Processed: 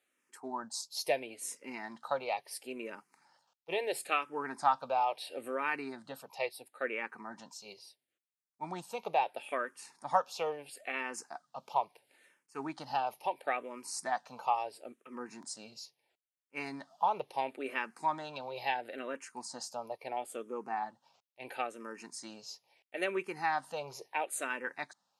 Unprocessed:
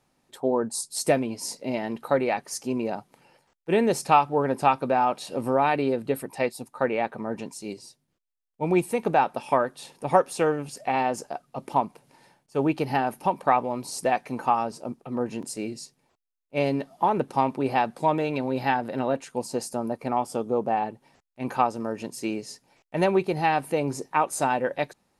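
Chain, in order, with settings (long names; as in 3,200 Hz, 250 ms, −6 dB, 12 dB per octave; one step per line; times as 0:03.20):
high-pass filter 1,500 Hz 6 dB per octave
high-shelf EQ 5,700 Hz −5.5 dB
frequency shifter mixed with the dry sound −0.74 Hz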